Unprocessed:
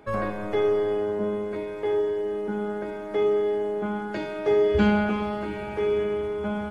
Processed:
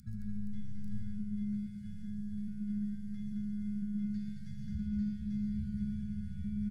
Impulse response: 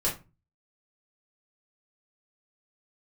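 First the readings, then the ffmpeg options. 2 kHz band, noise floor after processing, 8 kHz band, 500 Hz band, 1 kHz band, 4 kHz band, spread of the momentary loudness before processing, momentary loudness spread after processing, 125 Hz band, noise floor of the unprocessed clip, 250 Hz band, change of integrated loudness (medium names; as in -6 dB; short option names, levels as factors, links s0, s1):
under -30 dB, -42 dBFS, no reading, under -40 dB, under -40 dB, under -20 dB, 9 LU, 7 LU, -4.0 dB, -34 dBFS, -6.5 dB, -13.0 dB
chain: -filter_complex "[0:a]highshelf=f=4100:g=-10,asplit=2[s0][s1];[1:a]atrim=start_sample=2205[s2];[s1][s2]afir=irnorm=-1:irlink=0,volume=0.0316[s3];[s0][s3]amix=inputs=2:normalize=0,acompressor=mode=upward:threshold=0.0126:ratio=2.5,afftfilt=real='re*(1-between(b*sr/4096,230,1300))':imag='im*(1-between(b*sr/4096,230,1300))':win_size=4096:overlap=0.75,aexciter=amount=4.1:drive=4.2:freq=3800,acompressor=threshold=0.0158:ratio=6,aeval=exprs='val(0)+0.000562*(sin(2*PI*50*n/s)+sin(2*PI*2*50*n/s)/2+sin(2*PI*3*50*n/s)/3+sin(2*PI*4*50*n/s)/4+sin(2*PI*5*50*n/s)/5)':c=same,firequalizer=gain_entry='entry(120,0);entry(350,-5);entry(870,-26);entry(3000,-27);entry(4700,-17)':delay=0.05:min_phase=1,aecho=1:1:116|130|218|471|844|879:0.266|0.422|0.631|0.422|0.708|0.376" -ar 44100 -c:a libmp3lame -b:a 112k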